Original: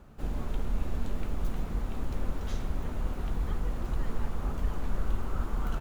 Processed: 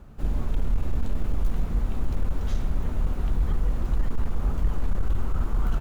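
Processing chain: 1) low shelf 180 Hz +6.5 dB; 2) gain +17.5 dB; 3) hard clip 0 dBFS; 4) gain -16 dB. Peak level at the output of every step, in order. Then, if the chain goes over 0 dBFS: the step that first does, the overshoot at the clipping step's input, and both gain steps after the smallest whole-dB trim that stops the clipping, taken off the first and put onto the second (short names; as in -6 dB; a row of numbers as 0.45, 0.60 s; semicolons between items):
-9.5, +8.0, 0.0, -16.0 dBFS; step 2, 8.0 dB; step 2 +9.5 dB, step 4 -8 dB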